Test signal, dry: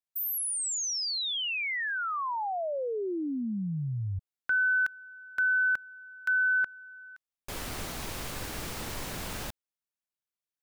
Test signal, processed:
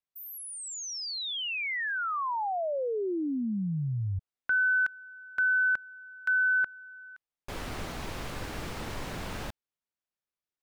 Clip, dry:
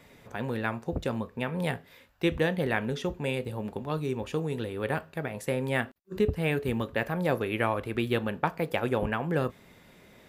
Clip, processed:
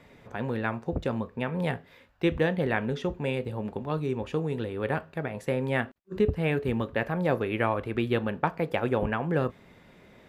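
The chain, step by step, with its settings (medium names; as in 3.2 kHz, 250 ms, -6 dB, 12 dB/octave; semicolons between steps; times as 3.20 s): low-pass 2.8 kHz 6 dB/octave; trim +1.5 dB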